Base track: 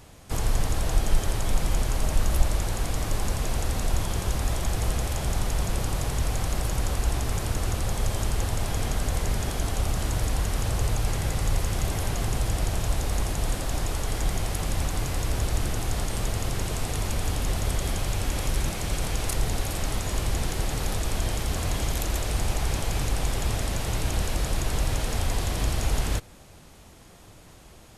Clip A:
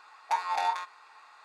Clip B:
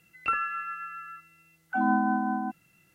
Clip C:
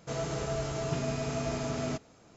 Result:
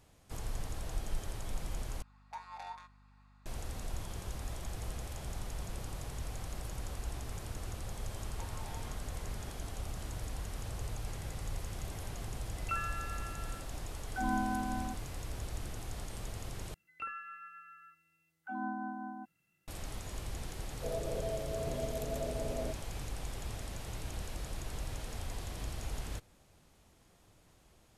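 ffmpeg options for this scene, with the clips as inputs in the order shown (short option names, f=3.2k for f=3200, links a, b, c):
-filter_complex "[1:a]asplit=2[a][b];[2:a]asplit=2[c][d];[0:a]volume=-14.5dB[e];[a]aeval=exprs='val(0)+0.00631*(sin(2*PI*50*n/s)+sin(2*PI*2*50*n/s)/2+sin(2*PI*3*50*n/s)/3+sin(2*PI*4*50*n/s)/4+sin(2*PI*5*50*n/s)/5)':c=same[f];[b]acompressor=threshold=-43dB:ratio=6:attack=3.2:release=140:knee=1:detection=peak[g];[3:a]lowpass=f=560:t=q:w=6.1[h];[e]asplit=3[i][j][k];[i]atrim=end=2.024[l];[f]atrim=end=1.44,asetpts=PTS-STARTPTS,volume=-17dB[m];[j]atrim=start=3.456:end=16.744[n];[d]atrim=end=2.94,asetpts=PTS-STARTPTS,volume=-14dB[o];[k]atrim=start=19.676[p];[g]atrim=end=1.44,asetpts=PTS-STARTPTS,volume=-7dB,afade=t=in:d=0.004:c=hsin,afade=t=out:st=1.436:d=0.004:c=hsin,adelay=8090[q];[c]atrim=end=2.94,asetpts=PTS-STARTPTS,volume=-9dB,afade=t=in:d=0.004:c=hsin,afade=t=out:st=2.936:d=0.004:c=hsin,adelay=12430[r];[h]atrim=end=2.36,asetpts=PTS-STARTPTS,volume=-10.5dB,afade=t=in:d=0.004:c=hsin,afade=t=out:st=2.356:d=0.004:c=hsin,adelay=20750[s];[l][m]acrossfade=d=0.004:c1=hsin:c2=hsin[t];[t][n]acrossfade=d=0.004:c1=hsin:c2=hsin[u];[u][o]acrossfade=d=0.004:c1=hsin:c2=hsin[v];[v][p]acrossfade=d=0.004:c1=hsin:c2=hsin[w];[w][q][r][s]amix=inputs=4:normalize=0"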